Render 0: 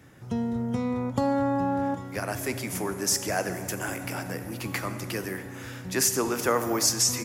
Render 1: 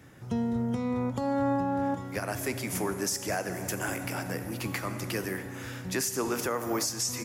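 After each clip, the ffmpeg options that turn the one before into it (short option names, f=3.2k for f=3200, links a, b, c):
-af "alimiter=limit=-19.5dB:level=0:latency=1:release=280"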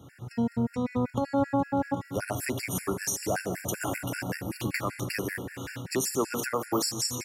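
-af "afftfilt=real='re*gt(sin(2*PI*5.2*pts/sr)*(1-2*mod(floor(b*sr/1024/1400),2)),0)':imag='im*gt(sin(2*PI*5.2*pts/sr)*(1-2*mod(floor(b*sr/1024/1400),2)),0)':win_size=1024:overlap=0.75,volume=4dB"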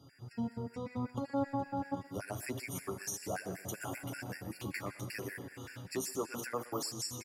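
-filter_complex "[0:a]flanger=delay=7:depth=4.2:regen=-22:speed=0.74:shape=triangular,asplit=2[a][b];[b]adelay=120,highpass=300,lowpass=3.4k,asoftclip=type=hard:threshold=-25.5dB,volume=-18dB[c];[a][c]amix=inputs=2:normalize=0,aeval=exprs='val(0)+0.000631*sin(2*PI*4800*n/s)':c=same,volume=-6dB"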